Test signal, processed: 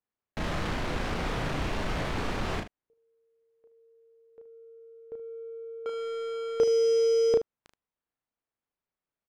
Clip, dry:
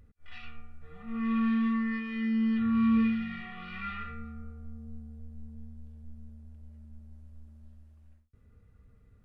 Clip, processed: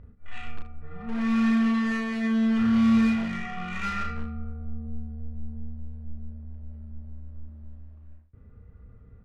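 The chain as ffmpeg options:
-filter_complex "[0:a]asplit=2[s0][s1];[s1]aeval=exprs='(mod(39.8*val(0)+1,2)-1)/39.8':c=same,volume=0.355[s2];[s0][s2]amix=inputs=2:normalize=0,adynamicsmooth=sensitivity=6:basefreq=1900,aecho=1:1:34|76:0.631|0.251,volume=1.88"

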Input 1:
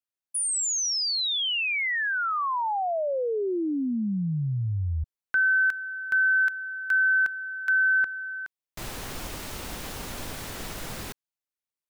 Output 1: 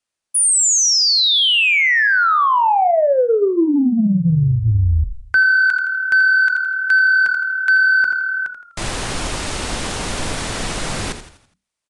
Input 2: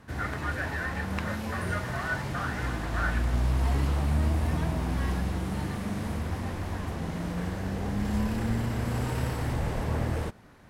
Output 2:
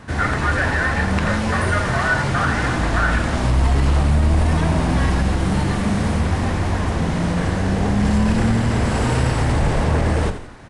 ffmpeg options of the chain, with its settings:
-filter_complex "[0:a]bandreject=f=60:t=h:w=6,bandreject=f=120:t=h:w=6,bandreject=f=180:t=h:w=6,bandreject=f=240:t=h:w=6,bandreject=f=300:t=h:w=6,bandreject=f=360:t=h:w=6,bandreject=f=420:t=h:w=6,bandreject=f=480:t=h:w=6,acontrast=34,asoftclip=type=tanh:threshold=0.251,asplit=2[s0][s1];[s1]asplit=5[s2][s3][s4][s5][s6];[s2]adelay=83,afreqshift=-38,volume=0.299[s7];[s3]adelay=166,afreqshift=-76,volume=0.135[s8];[s4]adelay=249,afreqshift=-114,volume=0.0603[s9];[s5]adelay=332,afreqshift=-152,volume=0.0272[s10];[s6]adelay=415,afreqshift=-190,volume=0.0123[s11];[s7][s8][s9][s10][s11]amix=inputs=5:normalize=0[s12];[s0][s12]amix=inputs=2:normalize=0,aresample=22050,aresample=44100,alimiter=level_in=5.96:limit=0.891:release=50:level=0:latency=1,volume=0.422" -ar 44100 -c:a libmp3lame -b:a 80k

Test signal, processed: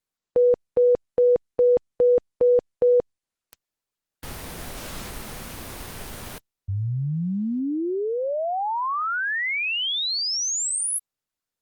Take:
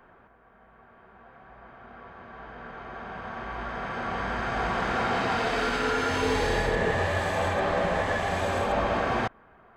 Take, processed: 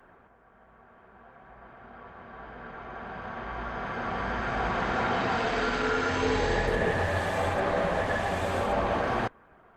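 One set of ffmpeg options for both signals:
-ar 48000 -c:a libopus -b:a 24k

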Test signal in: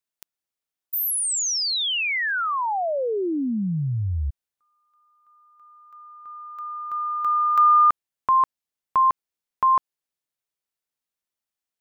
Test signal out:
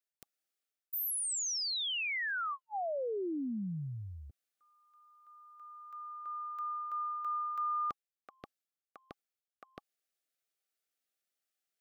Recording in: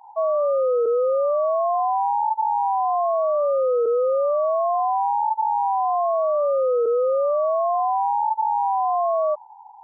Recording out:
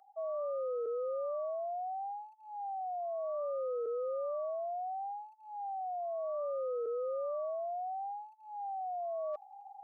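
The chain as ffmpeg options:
-af "highpass=280,areverse,acompressor=threshold=0.0178:ratio=5:attack=0.19:release=699:knee=6:detection=peak,areverse,asuperstop=centerf=970:order=12:qfactor=3.1"

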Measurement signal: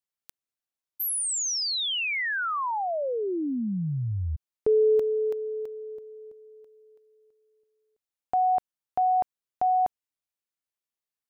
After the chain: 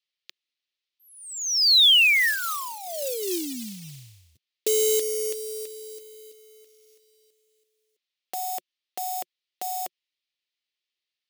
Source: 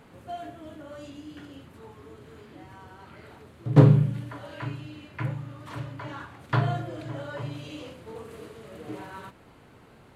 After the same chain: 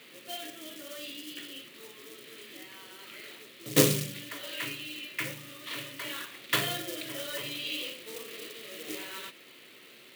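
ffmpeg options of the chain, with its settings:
-af "highpass=f=170:w=0.5412,highpass=f=170:w=1.3066,equalizer=f=180:t=q:w=4:g=-5,equalizer=f=360:t=q:w=4:g=7,equalizer=f=540:t=q:w=4:g=5,equalizer=f=820:t=q:w=4:g=-7,equalizer=f=1300:t=q:w=4:g=6,equalizer=f=1800:t=q:w=4:g=6,lowpass=f=4100:w=0.5412,lowpass=f=4100:w=1.3066,acrusher=bits=6:mode=log:mix=0:aa=0.000001,aexciter=amount=10.2:drive=5:freq=2200,volume=0.473"

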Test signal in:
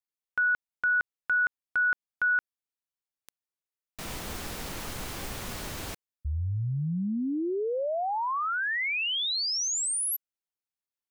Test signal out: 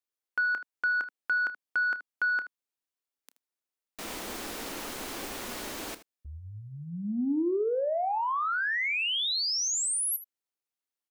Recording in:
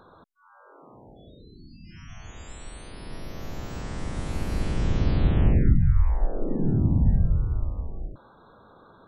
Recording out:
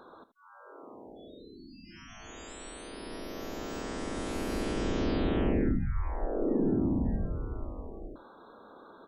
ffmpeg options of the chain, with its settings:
-filter_complex "[0:a]lowshelf=f=190:t=q:w=1.5:g=-11,asoftclip=type=tanh:threshold=0.133,asplit=2[s0][s1];[s1]aecho=0:1:29|78:0.168|0.178[s2];[s0][s2]amix=inputs=2:normalize=0"

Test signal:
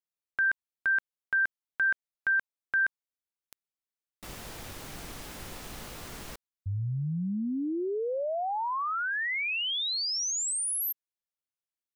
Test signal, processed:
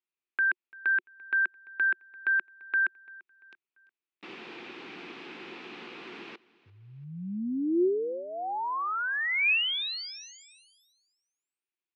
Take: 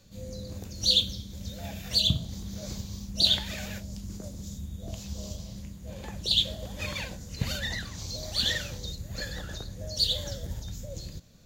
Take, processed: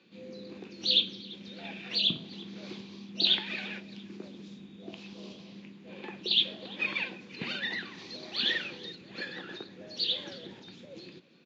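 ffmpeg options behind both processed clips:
-af "highpass=f=210:w=0.5412,highpass=f=210:w=1.3066,equalizer=f=360:t=q:w=4:g=9,equalizer=f=600:t=q:w=4:g=-10,equalizer=f=2500:t=q:w=4:g=8,lowpass=f=3800:w=0.5412,lowpass=f=3800:w=1.3066,aecho=1:1:342|684|1026:0.075|0.0307|0.0126"

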